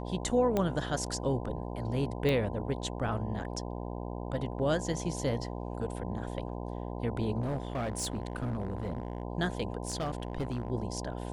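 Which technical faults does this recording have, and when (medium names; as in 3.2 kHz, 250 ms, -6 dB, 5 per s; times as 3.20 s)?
buzz 60 Hz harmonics 17 -38 dBFS
0.57 s: pop -16 dBFS
2.29 s: pop -18 dBFS
7.40–9.23 s: clipped -29 dBFS
9.87–10.70 s: clipped -28.5 dBFS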